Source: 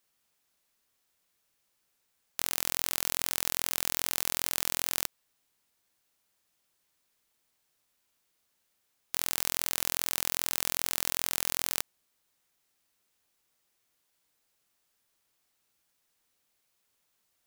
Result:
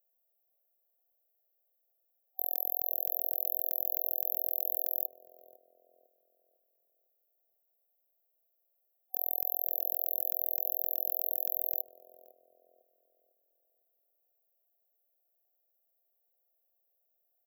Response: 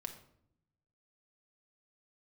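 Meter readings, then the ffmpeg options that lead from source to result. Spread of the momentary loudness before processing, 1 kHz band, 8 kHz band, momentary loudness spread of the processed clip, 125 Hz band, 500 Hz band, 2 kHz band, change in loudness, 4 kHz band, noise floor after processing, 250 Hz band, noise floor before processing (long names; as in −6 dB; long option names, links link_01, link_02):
4 LU, −11.0 dB, below −40 dB, 4 LU, below −40 dB, −0.5 dB, below −40 dB, −1.0 dB, below −40 dB, −78 dBFS, below −15 dB, −76 dBFS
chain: -filter_complex "[0:a]highpass=frequency=530:width=0.5412,highpass=frequency=530:width=1.3066,afftfilt=real='re*(1-between(b*sr/4096,760,12000))':imag='im*(1-between(b*sr/4096,760,12000))':win_size=4096:overlap=0.75,asplit=2[link_01][link_02];[link_02]adelay=502,lowpass=frequency=1200:poles=1,volume=-8.5dB,asplit=2[link_03][link_04];[link_04]adelay=502,lowpass=frequency=1200:poles=1,volume=0.42,asplit=2[link_05][link_06];[link_06]adelay=502,lowpass=frequency=1200:poles=1,volume=0.42,asplit=2[link_07][link_08];[link_08]adelay=502,lowpass=frequency=1200:poles=1,volume=0.42,asplit=2[link_09][link_10];[link_10]adelay=502,lowpass=frequency=1200:poles=1,volume=0.42[link_11];[link_03][link_05][link_07][link_09][link_11]amix=inputs=5:normalize=0[link_12];[link_01][link_12]amix=inputs=2:normalize=0,volume=2dB"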